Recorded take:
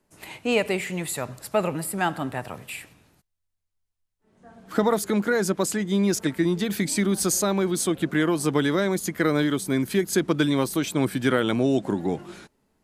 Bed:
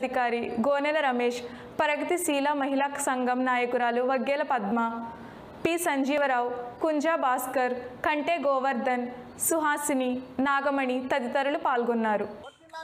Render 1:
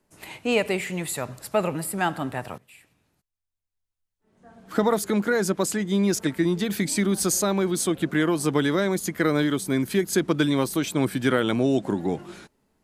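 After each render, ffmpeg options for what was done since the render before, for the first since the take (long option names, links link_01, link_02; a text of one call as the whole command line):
ffmpeg -i in.wav -filter_complex "[0:a]asplit=2[link_01][link_02];[link_01]atrim=end=2.58,asetpts=PTS-STARTPTS,afade=type=out:start_time=2.576:duration=0.004:curve=hsin:silence=0.112202[link_03];[link_02]atrim=start=2.58,asetpts=PTS-STARTPTS,afade=type=in:duration=2.28:silence=0.112202[link_04];[link_03][link_04]concat=n=2:v=0:a=1" out.wav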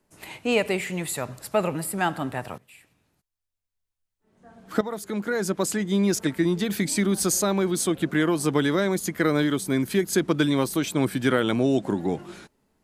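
ffmpeg -i in.wav -filter_complex "[0:a]asplit=2[link_01][link_02];[link_01]atrim=end=4.81,asetpts=PTS-STARTPTS,afade=type=out:start_time=4.806:duration=0.004:curve=hsin:silence=0.211349[link_03];[link_02]atrim=start=4.81,asetpts=PTS-STARTPTS,afade=type=in:duration=0.91:silence=0.211349[link_04];[link_03][link_04]concat=n=2:v=0:a=1" out.wav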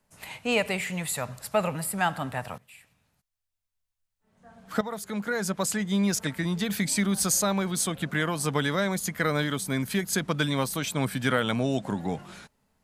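ffmpeg -i in.wav -af "equalizer=frequency=340:width_type=o:width=0.61:gain=-13" out.wav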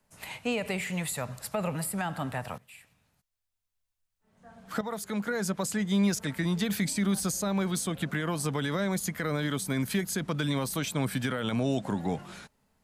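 ffmpeg -i in.wav -filter_complex "[0:a]alimiter=limit=-17.5dB:level=0:latency=1:release=38,acrossover=split=470[link_01][link_02];[link_02]acompressor=threshold=-31dB:ratio=6[link_03];[link_01][link_03]amix=inputs=2:normalize=0" out.wav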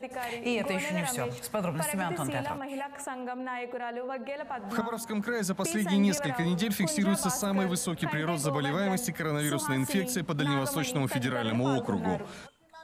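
ffmpeg -i in.wav -i bed.wav -filter_complex "[1:a]volume=-10dB[link_01];[0:a][link_01]amix=inputs=2:normalize=0" out.wav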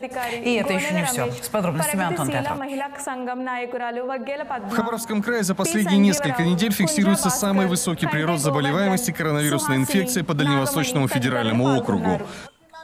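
ffmpeg -i in.wav -af "volume=8.5dB" out.wav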